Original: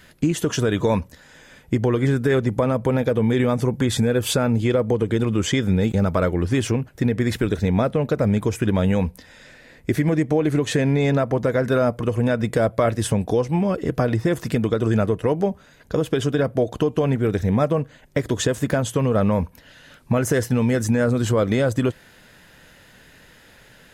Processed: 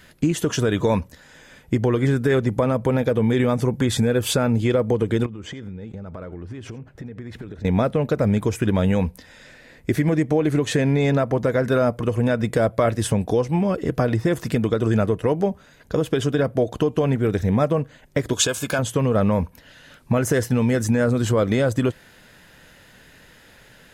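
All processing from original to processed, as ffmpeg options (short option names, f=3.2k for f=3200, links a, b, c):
-filter_complex "[0:a]asettb=1/sr,asplit=3[a][b][c];[a]atrim=end=5.264[d];[b]atrim=start=5.26:end=7.65,asetpts=PTS-STARTPTS,afade=t=in:d=0.004:c=qsin,afade=t=out:st=2.386:d=0.004:c=qsin,aemphasis=mode=reproduction:type=75kf,acompressor=threshold=-31dB:ratio=10:attack=3.2:release=140:knee=1:detection=peak,aecho=1:1:84:0.1,atrim=end_sample=105399[e];[c]atrim=start=7.646[f];[d][e]acrossfade=d=0.004:c1=hsin:c2=qsin[g];[g][f]acrossfade=d=0.004:c1=qsin:c2=hsin,asettb=1/sr,asplit=3[h][i][j];[h]atrim=end=18.334[k];[i]atrim=start=18.33:end=18.79,asetpts=PTS-STARTPTS,afade=t=in:d=0.004:c=qsin,afade=t=out:st=0.456:d=0.004:c=qsin,asuperstop=centerf=1900:order=12:qfactor=5.4,tiltshelf=f=790:g=-7.5[l];[j]atrim=start=18.786[m];[k][l]acrossfade=d=0.004:c1=hsin:c2=qsin[n];[n][m]acrossfade=d=0.004:c1=qsin:c2=hsin"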